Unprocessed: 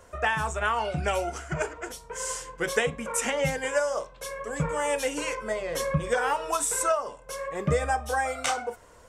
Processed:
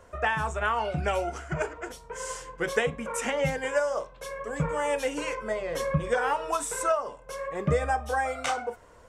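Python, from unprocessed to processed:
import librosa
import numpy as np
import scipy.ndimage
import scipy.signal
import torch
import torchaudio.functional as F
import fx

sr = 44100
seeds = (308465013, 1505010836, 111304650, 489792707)

y = fx.high_shelf(x, sr, hz=4200.0, db=-8.0)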